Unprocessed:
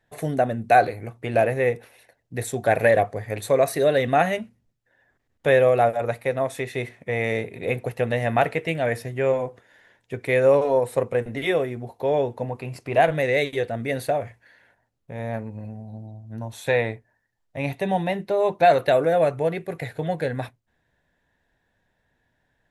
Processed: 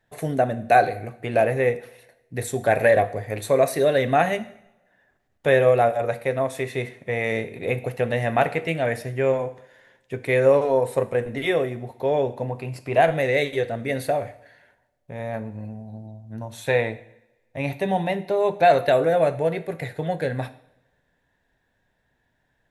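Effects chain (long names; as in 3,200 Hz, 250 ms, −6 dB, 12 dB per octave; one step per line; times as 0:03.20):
coupled-rooms reverb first 0.66 s, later 1.7 s, from −21 dB, DRR 11.5 dB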